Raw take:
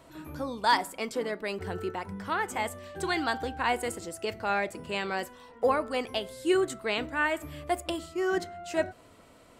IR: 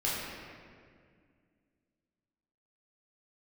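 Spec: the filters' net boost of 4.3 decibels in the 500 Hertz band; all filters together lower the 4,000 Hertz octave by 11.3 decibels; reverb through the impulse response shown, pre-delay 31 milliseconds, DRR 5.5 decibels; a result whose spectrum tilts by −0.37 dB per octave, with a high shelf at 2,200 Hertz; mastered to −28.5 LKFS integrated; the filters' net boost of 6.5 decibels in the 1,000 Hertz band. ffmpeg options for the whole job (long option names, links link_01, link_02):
-filter_complex "[0:a]equalizer=frequency=500:width_type=o:gain=4,equalizer=frequency=1000:width_type=o:gain=8.5,highshelf=frequency=2200:gain=-8,equalizer=frequency=4000:width_type=o:gain=-9,asplit=2[link_01][link_02];[1:a]atrim=start_sample=2205,adelay=31[link_03];[link_02][link_03]afir=irnorm=-1:irlink=0,volume=-13.5dB[link_04];[link_01][link_04]amix=inputs=2:normalize=0,volume=-2.5dB"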